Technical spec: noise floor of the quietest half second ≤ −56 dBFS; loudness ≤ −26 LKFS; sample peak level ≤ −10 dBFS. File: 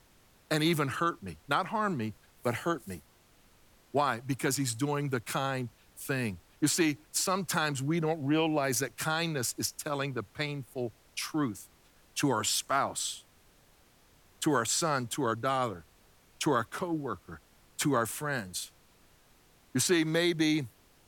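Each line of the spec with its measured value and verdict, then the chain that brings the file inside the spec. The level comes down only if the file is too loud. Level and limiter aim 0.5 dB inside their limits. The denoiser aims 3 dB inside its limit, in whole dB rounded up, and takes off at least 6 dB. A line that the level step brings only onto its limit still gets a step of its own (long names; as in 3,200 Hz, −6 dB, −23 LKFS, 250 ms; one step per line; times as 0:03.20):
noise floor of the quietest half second −62 dBFS: in spec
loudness −31.0 LKFS: in spec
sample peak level −13.5 dBFS: in spec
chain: no processing needed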